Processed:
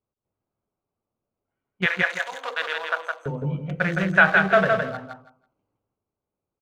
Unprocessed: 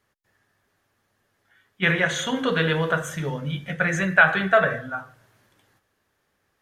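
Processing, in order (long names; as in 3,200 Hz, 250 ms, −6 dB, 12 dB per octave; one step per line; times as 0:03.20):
adaptive Wiener filter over 25 samples
0:01.86–0:03.26: high-pass filter 650 Hz 24 dB per octave
noise gate −45 dBFS, range −12 dB
on a send: repeating echo 164 ms, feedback 18%, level −4 dB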